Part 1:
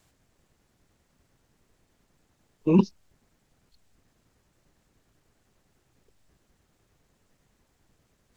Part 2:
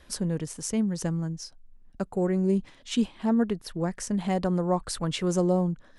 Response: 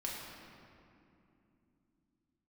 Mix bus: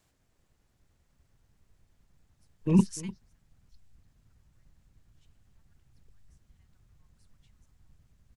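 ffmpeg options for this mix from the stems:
-filter_complex "[0:a]volume=0.531,asplit=3[s0][s1][s2];[s1]volume=0.126[s3];[1:a]highpass=f=1300:w=0.5412,highpass=f=1300:w=1.3066,adelay=2300,volume=0.473[s4];[s2]apad=whole_len=365521[s5];[s4][s5]sidechaingate=range=0.0224:threshold=0.00158:ratio=16:detection=peak[s6];[s3]aecho=0:1:297:1[s7];[s0][s6][s7]amix=inputs=3:normalize=0,asubboost=boost=6.5:cutoff=150"

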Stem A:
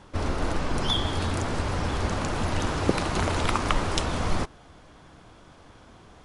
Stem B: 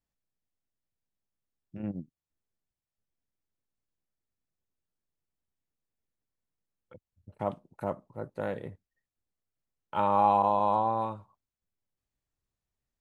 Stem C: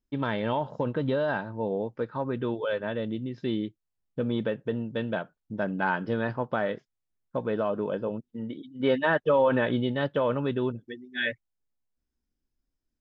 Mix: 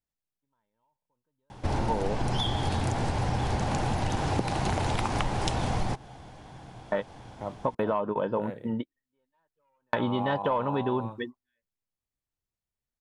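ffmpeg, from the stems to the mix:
-filter_complex "[0:a]equalizer=f=125:t=o:w=0.33:g=11,equalizer=f=200:t=o:w=0.33:g=3,equalizer=f=800:t=o:w=0.33:g=9,equalizer=f=1250:t=o:w=0.33:g=-6,adelay=1500,volume=1.19[s0];[1:a]volume=0.596,asplit=2[s1][s2];[2:a]equalizer=f=950:t=o:w=0.44:g=12.5,aeval=exprs='0.473*sin(PI/2*1.41*val(0)/0.473)':c=same,adelay=300,volume=0.794[s3];[s2]apad=whole_len=586900[s4];[s3][s4]sidechaingate=range=0.00112:threshold=0.00141:ratio=16:detection=peak[s5];[s0][s1][s5]amix=inputs=3:normalize=0,acompressor=threshold=0.0631:ratio=6"

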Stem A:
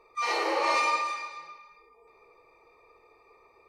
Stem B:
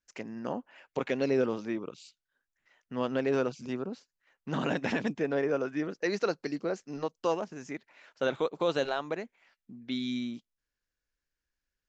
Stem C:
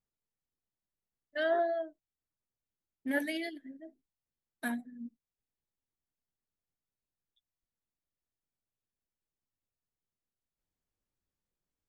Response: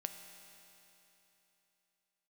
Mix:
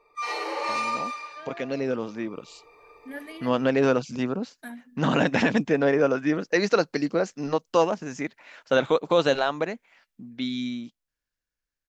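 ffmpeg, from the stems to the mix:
-filter_complex "[0:a]aecho=1:1:6.8:0.48,volume=0.631[s0];[1:a]equalizer=f=380:t=o:w=0.23:g=-5,adelay=500,volume=0.708[s1];[2:a]volume=0.15[s2];[s0][s1][s2]amix=inputs=3:normalize=0,dynaudnorm=f=300:g=17:m=3.98"

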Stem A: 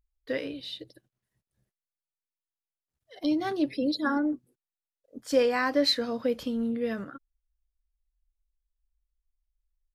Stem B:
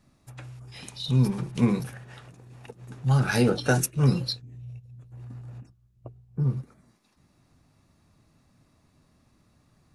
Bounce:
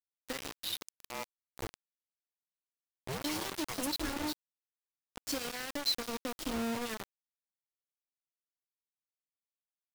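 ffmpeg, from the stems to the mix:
-filter_complex "[0:a]acompressor=threshold=0.0447:ratio=8,equalizer=f=1000:t=o:w=0.81:g=-14.5,volume=1.26[s0];[1:a]acompressor=mode=upward:threshold=0.0251:ratio=2.5,aeval=exprs='val(0)*sin(2*PI*450*n/s+450*0.65/0.85*sin(2*PI*0.85*n/s))':c=same,volume=0.299[s1];[s0][s1]amix=inputs=2:normalize=0,lowshelf=f=170:g=-8,acrossover=split=180|3000[s2][s3][s4];[s3]acompressor=threshold=0.00501:ratio=2[s5];[s2][s5][s4]amix=inputs=3:normalize=0,acrusher=bits=5:mix=0:aa=0.000001"

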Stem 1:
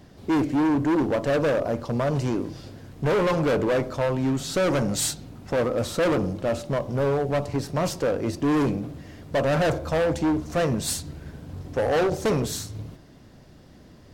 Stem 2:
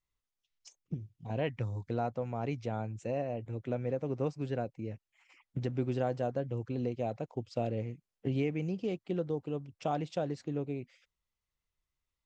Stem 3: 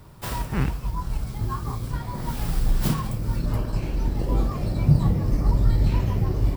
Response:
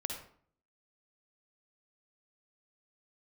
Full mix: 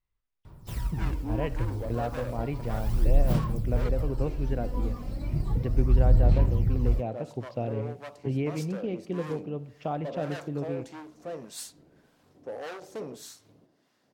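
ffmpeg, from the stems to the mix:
-filter_complex "[0:a]highpass=290,acrossover=split=790[s0][s1];[s0]aeval=exprs='val(0)*(1-0.7/2+0.7/2*cos(2*PI*1.7*n/s))':c=same[s2];[s1]aeval=exprs='val(0)*(1-0.7/2-0.7/2*cos(2*PI*1.7*n/s))':c=same[s3];[s2][s3]amix=inputs=2:normalize=0,adelay=700,volume=0.266,asplit=3[s4][s5][s6];[s4]atrim=end=3.89,asetpts=PTS-STARTPTS,afade=t=out:st=3.886:d=0.004:c=hsin[s7];[s5]atrim=start=3.89:end=6.86,asetpts=PTS-STARTPTS,volume=0[s8];[s6]atrim=start=6.86,asetpts=PTS-STARTPTS,afade=t=in:d=0.004:c=hsin[s9];[s7][s8][s9]concat=n=3:v=0:a=1[s10];[1:a]lowpass=3100,volume=0.891,asplit=2[s11][s12];[s12]volume=0.251[s13];[2:a]aphaser=in_gain=1:out_gain=1:delay=4.1:decay=0.6:speed=0.34:type=sinusoidal,adelay=450,volume=0.237[s14];[3:a]atrim=start_sample=2205[s15];[s13][s15]afir=irnorm=-1:irlink=0[s16];[s10][s11][s14][s16]amix=inputs=4:normalize=0,lowshelf=f=120:g=6"

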